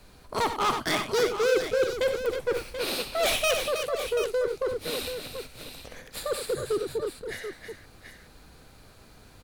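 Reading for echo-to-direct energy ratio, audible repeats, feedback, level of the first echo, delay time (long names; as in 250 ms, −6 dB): −4.0 dB, 4, repeats not evenly spaced, −11.5 dB, 64 ms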